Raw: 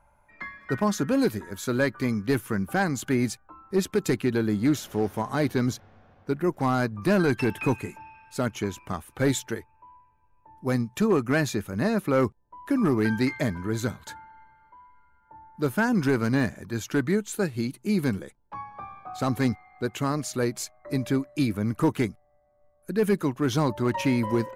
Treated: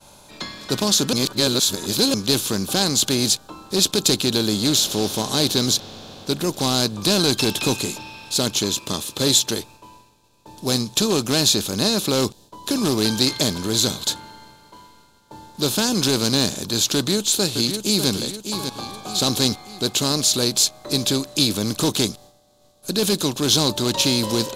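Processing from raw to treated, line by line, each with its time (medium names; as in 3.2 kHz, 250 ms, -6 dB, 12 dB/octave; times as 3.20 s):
1.13–2.14 s: reverse
8.63–9.48 s: comb of notches 750 Hz
16.95–18.09 s: echo throw 600 ms, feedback 30%, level -13 dB
whole clip: spectral levelling over time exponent 0.6; resonant high shelf 2.7 kHz +12.5 dB, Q 3; expander -39 dBFS; trim -1 dB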